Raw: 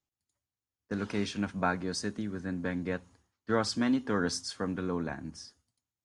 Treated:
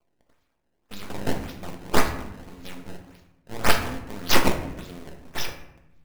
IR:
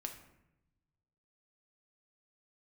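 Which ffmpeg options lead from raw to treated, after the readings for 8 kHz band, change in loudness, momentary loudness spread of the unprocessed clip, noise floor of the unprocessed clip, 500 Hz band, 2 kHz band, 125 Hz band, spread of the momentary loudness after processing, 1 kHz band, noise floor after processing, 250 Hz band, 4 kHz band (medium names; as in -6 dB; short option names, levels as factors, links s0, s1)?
+7.0 dB, +6.0 dB, 11 LU, under -85 dBFS, +3.0 dB, +7.5 dB, +3.5 dB, 20 LU, +7.5 dB, -72 dBFS, -1.0 dB, +9.0 dB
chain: -filter_complex "[0:a]aexciter=amount=11:drive=9.3:freq=2700,acrusher=samples=22:mix=1:aa=0.000001:lfo=1:lforange=35.2:lforate=1.8,aeval=exprs='max(val(0),0)':c=same[s0];[1:a]atrim=start_sample=2205[s1];[s0][s1]afir=irnorm=-1:irlink=0,volume=0.596"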